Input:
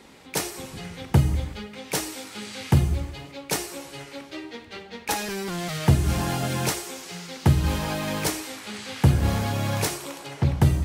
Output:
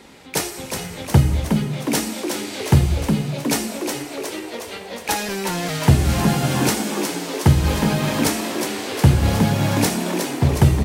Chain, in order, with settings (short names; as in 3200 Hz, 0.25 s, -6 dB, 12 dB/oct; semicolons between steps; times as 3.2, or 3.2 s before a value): notch 1100 Hz, Q 22; frequency-shifting echo 0.363 s, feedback 61%, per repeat +74 Hz, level -6 dB; gain +4.5 dB